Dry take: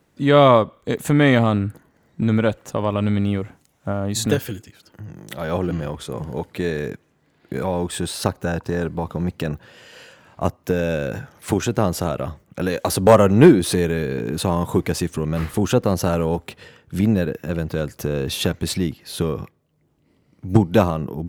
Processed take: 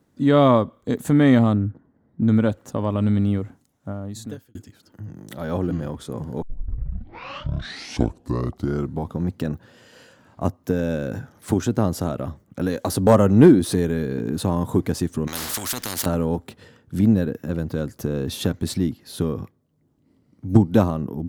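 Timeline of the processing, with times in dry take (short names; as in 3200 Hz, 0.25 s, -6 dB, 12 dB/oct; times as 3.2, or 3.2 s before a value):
1.53–2.28 tape spacing loss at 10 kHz 42 dB
3.36–4.55 fade out linear
6.42 tape start 2.77 s
15.27–16.06 spectral compressor 10:1
whole clip: fifteen-band EQ 100 Hz +5 dB, 250 Hz +8 dB, 2500 Hz -6 dB; gain -4.5 dB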